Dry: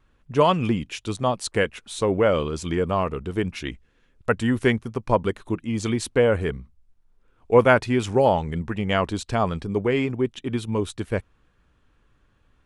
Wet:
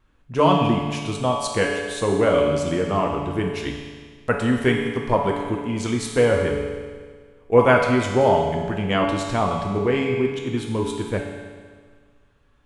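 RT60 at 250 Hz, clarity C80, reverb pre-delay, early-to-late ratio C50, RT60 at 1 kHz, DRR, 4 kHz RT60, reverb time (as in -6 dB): 1.7 s, 4.5 dB, 7 ms, 2.5 dB, 1.7 s, -0.5 dB, 1.6 s, 1.7 s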